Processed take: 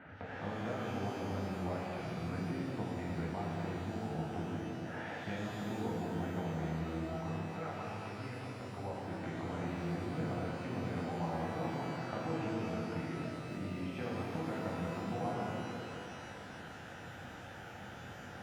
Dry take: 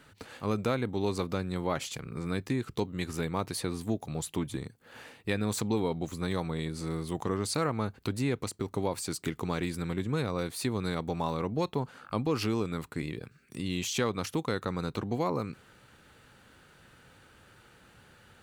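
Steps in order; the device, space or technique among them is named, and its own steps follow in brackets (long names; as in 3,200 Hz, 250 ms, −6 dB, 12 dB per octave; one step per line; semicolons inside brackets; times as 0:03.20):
bass amplifier (downward compressor 5 to 1, threshold −46 dBFS, peak gain reduction 19.5 dB; loudspeaker in its box 72–2,100 Hz, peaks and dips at 410 Hz −8 dB, 750 Hz +8 dB, 1,100 Hz −7 dB)
0:07.07–0:08.82: parametric band 230 Hz −8 dB 1.7 octaves
reverb with rising layers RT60 2.8 s, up +12 semitones, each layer −8 dB, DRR −6 dB
level +3.5 dB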